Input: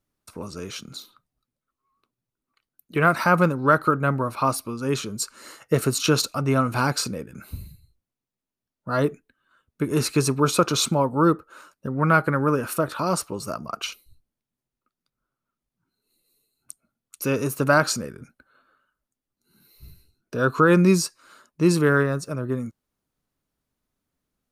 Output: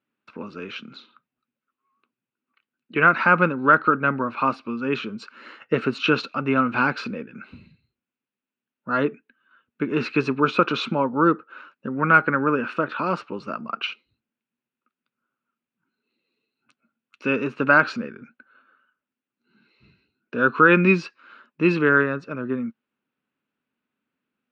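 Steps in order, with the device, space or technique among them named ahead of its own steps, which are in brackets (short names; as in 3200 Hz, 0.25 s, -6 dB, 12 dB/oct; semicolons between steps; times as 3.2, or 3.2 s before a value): 20.5–21.79 dynamic EQ 2600 Hz, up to +5 dB, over -37 dBFS, Q 1.2; kitchen radio (speaker cabinet 210–3400 Hz, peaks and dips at 230 Hz +7 dB, 670 Hz -5 dB, 1500 Hz +6 dB, 2600 Hz +8 dB)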